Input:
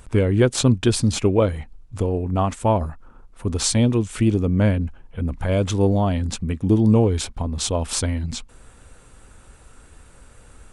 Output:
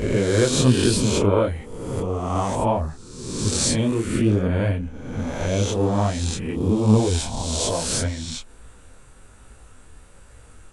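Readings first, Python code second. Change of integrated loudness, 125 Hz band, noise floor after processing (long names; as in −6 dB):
−1.0 dB, −2.0 dB, −48 dBFS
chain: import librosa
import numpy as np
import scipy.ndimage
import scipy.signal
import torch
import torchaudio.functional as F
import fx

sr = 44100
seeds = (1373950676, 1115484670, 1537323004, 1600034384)

y = fx.spec_swells(x, sr, rise_s=1.26)
y = fx.detune_double(y, sr, cents=40)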